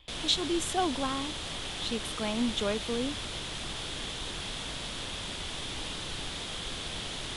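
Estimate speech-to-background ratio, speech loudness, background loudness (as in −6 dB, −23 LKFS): 4.0 dB, −32.0 LKFS, −36.0 LKFS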